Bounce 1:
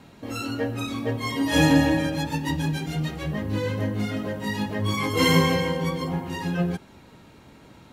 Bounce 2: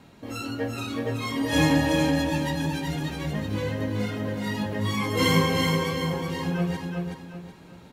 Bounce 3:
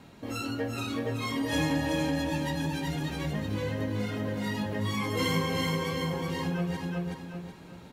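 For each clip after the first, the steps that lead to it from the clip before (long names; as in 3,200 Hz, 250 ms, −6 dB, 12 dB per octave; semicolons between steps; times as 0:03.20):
repeating echo 375 ms, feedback 35%, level −4 dB; level −2.5 dB
downward compressor 2 to 1, threshold −30 dBFS, peak gain reduction 8 dB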